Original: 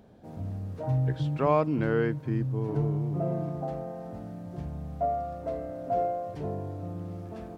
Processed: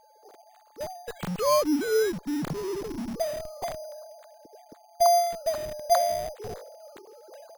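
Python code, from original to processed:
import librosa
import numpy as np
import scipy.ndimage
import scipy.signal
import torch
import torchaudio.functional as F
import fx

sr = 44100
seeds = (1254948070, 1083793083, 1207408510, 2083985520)

p1 = fx.sine_speech(x, sr)
p2 = fx.high_shelf(p1, sr, hz=2800.0, db=4.0)
p3 = p2 + 10.0 ** (-57.0 / 20.0) * np.sin(2.0 * np.pi * 860.0 * np.arange(len(p2)) / sr)
p4 = fx.schmitt(p3, sr, flips_db=-33.5)
p5 = p3 + (p4 * librosa.db_to_amplitude(-10.0))
y = np.repeat(p5[::8], 8)[:len(p5)]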